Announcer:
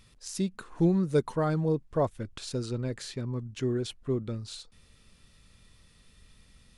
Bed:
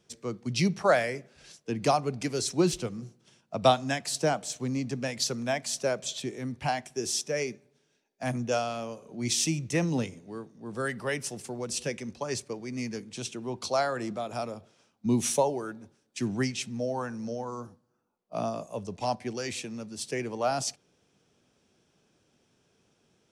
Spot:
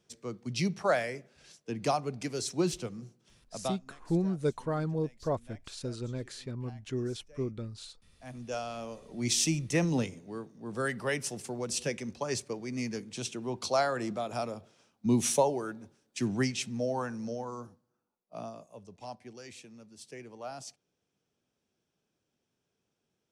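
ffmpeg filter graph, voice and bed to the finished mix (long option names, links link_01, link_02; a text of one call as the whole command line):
ffmpeg -i stem1.wav -i stem2.wav -filter_complex "[0:a]adelay=3300,volume=-4.5dB[link_01];[1:a]volume=21dB,afade=type=out:start_time=3.26:duration=0.58:silence=0.0841395,afade=type=in:start_time=8.12:duration=1.12:silence=0.0530884,afade=type=out:start_time=16.97:duration=1.71:silence=0.223872[link_02];[link_01][link_02]amix=inputs=2:normalize=0" out.wav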